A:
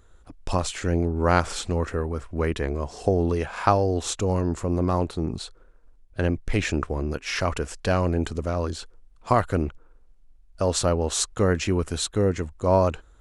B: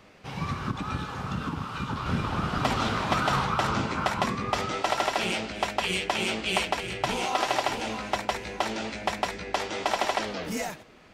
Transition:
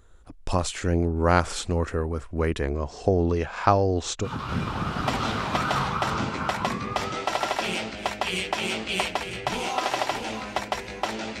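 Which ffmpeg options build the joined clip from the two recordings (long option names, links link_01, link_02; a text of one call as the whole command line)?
ffmpeg -i cue0.wav -i cue1.wav -filter_complex "[0:a]asettb=1/sr,asplit=3[link_01][link_02][link_03];[link_01]atrim=end=2.744[link_04];[link_02]atrim=start=2.74:end=4.28,asetpts=PTS-STARTPTS,afade=type=in:duration=0.004:curve=qsin,afade=type=out:start_time=1.536:duration=0.004:curve=qsin,lowpass=frequency=7200:width=0.5412,lowpass=frequency=7200:width=1.3066[link_05];[link_03]atrim=start=4.276[link_06];[link_04][link_05]acrossfade=duration=0.004:curve1=hsin:curve2=qsin[link_07];[link_07][link_06]acrossfade=duration=0.004:curve1=qsin:curve2=hsin,apad=whole_dur=11.4,atrim=end=11.4,atrim=end=4.28,asetpts=PTS-STARTPTS[link_08];[1:a]atrim=start=1.79:end=8.97,asetpts=PTS-STARTPTS[link_09];[link_08][link_09]acrossfade=duration=0.06:curve1=tri:curve2=tri" out.wav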